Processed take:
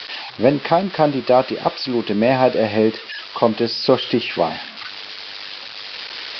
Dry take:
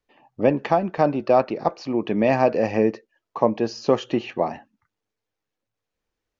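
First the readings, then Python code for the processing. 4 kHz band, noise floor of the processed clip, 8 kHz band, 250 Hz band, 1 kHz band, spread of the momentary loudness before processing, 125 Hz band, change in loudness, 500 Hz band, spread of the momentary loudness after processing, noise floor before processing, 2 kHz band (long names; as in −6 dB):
+16.0 dB, −36 dBFS, can't be measured, +3.5 dB, +3.5 dB, 8 LU, +3.5 dB, +3.5 dB, +3.5 dB, 14 LU, −84 dBFS, +7.0 dB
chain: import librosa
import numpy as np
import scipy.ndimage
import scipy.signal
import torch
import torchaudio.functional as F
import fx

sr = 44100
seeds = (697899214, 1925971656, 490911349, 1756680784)

p1 = x + 0.5 * 10.0 ** (-15.5 / 20.0) * np.diff(np.sign(x), prepend=np.sign(x[:1]))
p2 = scipy.signal.sosfilt(scipy.signal.butter(16, 5000.0, 'lowpass', fs=sr, output='sos'), p1)
p3 = fx.rider(p2, sr, range_db=5, speed_s=2.0)
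p4 = p2 + (p3 * 10.0 ** (-3.0 / 20.0))
y = p4 * 10.0 ** (-1.5 / 20.0)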